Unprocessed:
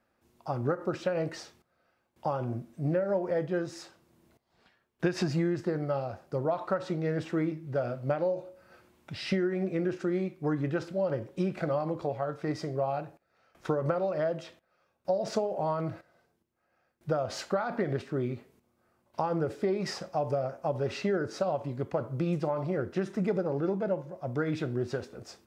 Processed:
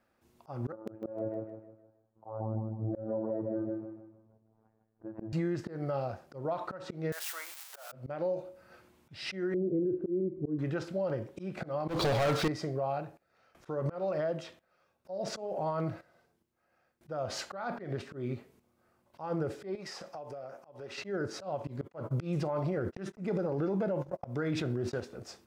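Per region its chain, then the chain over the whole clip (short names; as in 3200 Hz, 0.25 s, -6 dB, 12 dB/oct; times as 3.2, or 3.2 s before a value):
0.72–5.33 LPF 1000 Hz 24 dB/oct + robotiser 110 Hz + feedback echo 0.155 s, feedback 38%, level -5 dB
7.12–7.92 switching spikes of -28.5 dBFS + inverse Chebyshev high-pass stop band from 230 Hz, stop band 60 dB
9.54–10.59 comb 1.9 ms, depth 45% + upward compressor, threshold -36 dBFS + synth low-pass 340 Hz, resonance Q 3.5
11.88–12.48 bell 4100 Hz +13.5 dB 1.2 oct + sample leveller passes 5
19.75–20.98 HPF 380 Hz 6 dB/oct + compressor, threshold -40 dBFS
21.67–25 gate -41 dBFS, range -56 dB + fast leveller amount 50%
whole clip: auto swell 0.199 s; limiter -24.5 dBFS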